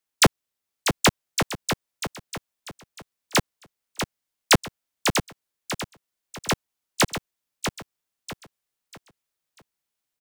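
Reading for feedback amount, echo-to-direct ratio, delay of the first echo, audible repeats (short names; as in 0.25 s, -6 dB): 34%, -7.0 dB, 0.643 s, 3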